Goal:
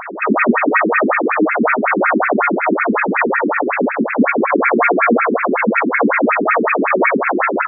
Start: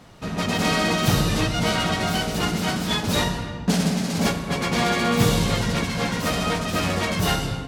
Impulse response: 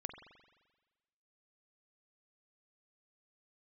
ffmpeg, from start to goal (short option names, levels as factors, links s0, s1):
-filter_complex "[0:a]asplit=2[s0][s1];[s1]aecho=0:1:136:0.188[s2];[s0][s2]amix=inputs=2:normalize=0,asoftclip=type=tanh:threshold=0.106,highshelf=f=4900:g=6.5,asplit=2[s3][s4];[s4]asplit=8[s5][s6][s7][s8][s9][s10][s11][s12];[s5]adelay=137,afreqshift=-53,volume=0.708[s13];[s6]adelay=274,afreqshift=-106,volume=0.412[s14];[s7]adelay=411,afreqshift=-159,volume=0.237[s15];[s8]adelay=548,afreqshift=-212,volume=0.138[s16];[s9]adelay=685,afreqshift=-265,volume=0.0804[s17];[s10]adelay=822,afreqshift=-318,volume=0.0462[s18];[s11]adelay=959,afreqshift=-371,volume=0.0269[s19];[s12]adelay=1096,afreqshift=-424,volume=0.0157[s20];[s13][s14][s15][s16][s17][s18][s19][s20]amix=inputs=8:normalize=0[s21];[s3][s21]amix=inputs=2:normalize=0,alimiter=level_in=17.8:limit=0.891:release=50:level=0:latency=1,afftfilt=real='re*between(b*sr/1024,280*pow(1900/280,0.5+0.5*sin(2*PI*5.4*pts/sr))/1.41,280*pow(1900/280,0.5+0.5*sin(2*PI*5.4*pts/sr))*1.41)':imag='im*between(b*sr/1024,280*pow(1900/280,0.5+0.5*sin(2*PI*5.4*pts/sr))/1.41,280*pow(1900/280,0.5+0.5*sin(2*PI*5.4*pts/sr))*1.41)':win_size=1024:overlap=0.75,volume=1.58"